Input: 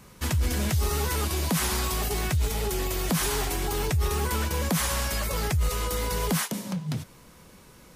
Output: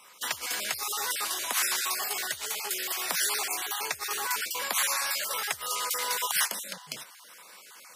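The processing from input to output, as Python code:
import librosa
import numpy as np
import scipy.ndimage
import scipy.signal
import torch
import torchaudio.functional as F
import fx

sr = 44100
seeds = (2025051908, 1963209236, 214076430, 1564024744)

y = fx.spec_dropout(x, sr, seeds[0], share_pct=26)
y = fx.rider(y, sr, range_db=10, speed_s=2.0)
y = scipy.signal.sosfilt(scipy.signal.butter(2, 980.0, 'highpass', fs=sr, output='sos'), y)
y = F.gain(torch.from_numpy(y), 3.5).numpy()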